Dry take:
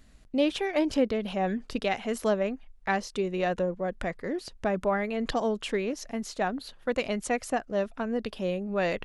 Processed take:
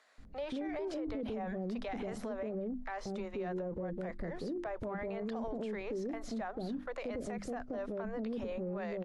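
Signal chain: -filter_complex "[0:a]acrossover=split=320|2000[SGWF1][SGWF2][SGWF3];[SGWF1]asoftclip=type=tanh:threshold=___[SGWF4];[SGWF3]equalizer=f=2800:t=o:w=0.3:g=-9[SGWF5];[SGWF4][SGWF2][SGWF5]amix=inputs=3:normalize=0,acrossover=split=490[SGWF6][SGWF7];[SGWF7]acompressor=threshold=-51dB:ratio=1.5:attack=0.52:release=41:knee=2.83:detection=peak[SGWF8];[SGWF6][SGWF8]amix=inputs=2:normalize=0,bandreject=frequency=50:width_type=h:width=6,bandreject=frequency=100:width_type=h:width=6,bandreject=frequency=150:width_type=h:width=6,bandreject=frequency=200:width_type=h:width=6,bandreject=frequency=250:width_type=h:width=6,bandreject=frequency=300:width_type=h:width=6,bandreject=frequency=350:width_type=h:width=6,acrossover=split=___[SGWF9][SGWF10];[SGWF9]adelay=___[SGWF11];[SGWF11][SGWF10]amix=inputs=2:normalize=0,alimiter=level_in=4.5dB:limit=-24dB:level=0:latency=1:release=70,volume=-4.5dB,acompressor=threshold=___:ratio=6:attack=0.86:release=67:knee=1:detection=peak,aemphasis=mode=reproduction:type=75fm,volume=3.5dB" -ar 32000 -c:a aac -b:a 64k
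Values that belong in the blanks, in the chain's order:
-37dB, 560, 180, -38dB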